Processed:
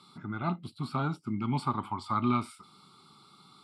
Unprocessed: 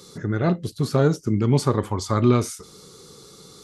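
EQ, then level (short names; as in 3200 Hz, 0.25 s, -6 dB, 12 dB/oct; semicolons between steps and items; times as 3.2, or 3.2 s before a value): speaker cabinet 150–9200 Hz, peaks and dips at 240 Hz +4 dB, 860 Hz +7 dB, 1300 Hz +8 dB, 2200 Hz +8 dB; fixed phaser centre 1800 Hz, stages 6; -8.0 dB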